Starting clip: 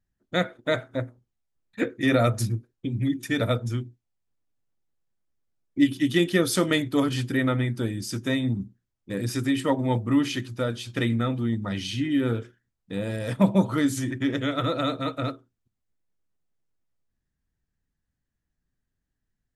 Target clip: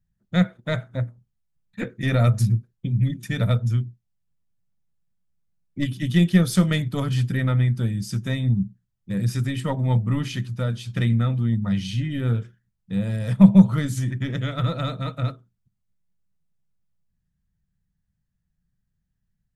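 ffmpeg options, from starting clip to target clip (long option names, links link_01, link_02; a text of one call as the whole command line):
ffmpeg -i in.wav -af "aeval=exprs='0.398*(cos(1*acos(clip(val(0)/0.398,-1,1)))-cos(1*PI/2))+0.0224*(cos(4*acos(clip(val(0)/0.398,-1,1)))-cos(4*PI/2))+0.00501*(cos(6*acos(clip(val(0)/0.398,-1,1)))-cos(6*PI/2))':channel_layout=same,lowshelf=frequency=230:width_type=q:width=3:gain=7.5,volume=-2.5dB" out.wav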